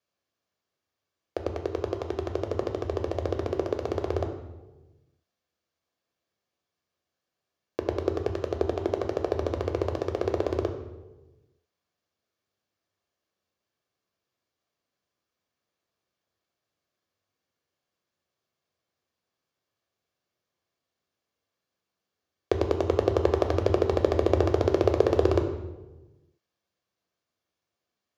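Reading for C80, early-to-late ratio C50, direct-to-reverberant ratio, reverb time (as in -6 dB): 9.5 dB, 8.0 dB, 5.0 dB, 1.2 s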